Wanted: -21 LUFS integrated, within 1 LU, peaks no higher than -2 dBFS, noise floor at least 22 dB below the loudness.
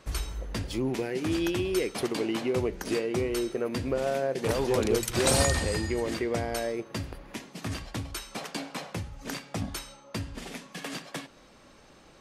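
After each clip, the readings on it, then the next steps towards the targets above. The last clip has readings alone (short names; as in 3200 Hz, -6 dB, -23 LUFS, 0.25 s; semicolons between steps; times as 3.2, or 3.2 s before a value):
loudness -30.5 LUFS; peak -9.0 dBFS; loudness target -21.0 LUFS
-> gain +9.5 dB; limiter -2 dBFS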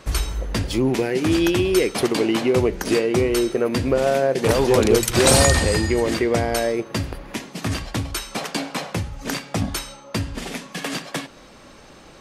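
loudness -21.0 LUFS; peak -2.0 dBFS; noise floor -46 dBFS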